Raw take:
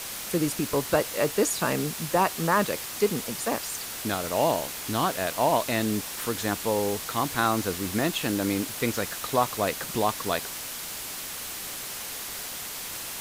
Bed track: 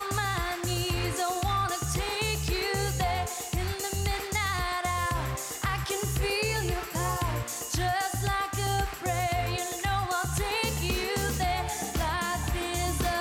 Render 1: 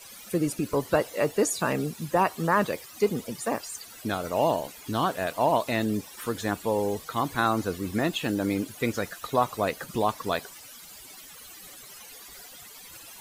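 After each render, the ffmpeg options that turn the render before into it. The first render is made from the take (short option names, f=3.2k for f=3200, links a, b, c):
-af "afftdn=nr=16:nf=-36"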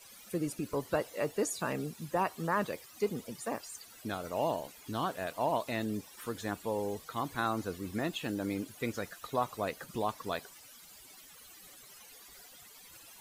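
-af "volume=-8dB"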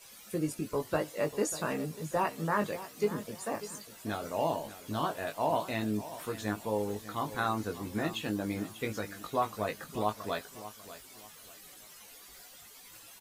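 -filter_complex "[0:a]asplit=2[a][b];[b]adelay=19,volume=-5dB[c];[a][c]amix=inputs=2:normalize=0,aecho=1:1:593|1186|1779:0.188|0.0584|0.0181"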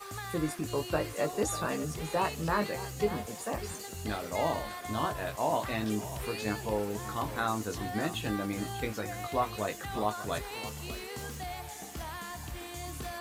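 -filter_complex "[1:a]volume=-11.5dB[a];[0:a][a]amix=inputs=2:normalize=0"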